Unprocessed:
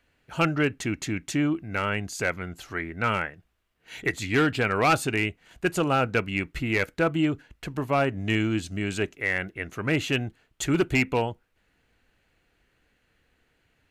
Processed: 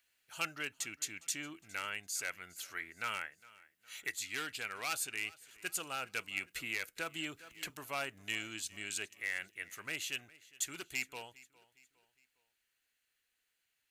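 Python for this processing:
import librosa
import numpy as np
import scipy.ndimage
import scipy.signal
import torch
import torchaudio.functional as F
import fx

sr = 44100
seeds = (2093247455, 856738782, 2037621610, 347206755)

y = F.preemphasis(torch.from_numpy(x), 0.97).numpy()
y = fx.rider(y, sr, range_db=3, speed_s=0.5)
y = fx.echo_feedback(y, sr, ms=409, feedback_pct=42, wet_db=-21.5)
y = fx.band_squash(y, sr, depth_pct=70, at=(6.37, 7.7))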